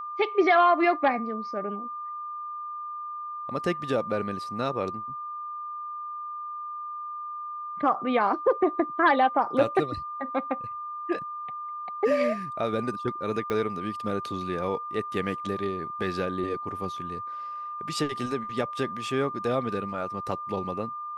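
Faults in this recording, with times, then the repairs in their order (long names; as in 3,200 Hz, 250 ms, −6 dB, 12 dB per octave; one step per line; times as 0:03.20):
whistle 1,200 Hz −33 dBFS
0:13.50: click −17 dBFS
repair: click removal
notch filter 1,200 Hz, Q 30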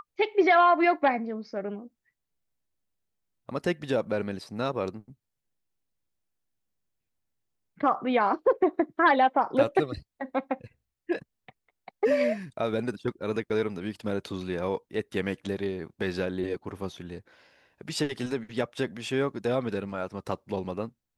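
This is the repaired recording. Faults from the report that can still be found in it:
0:13.50: click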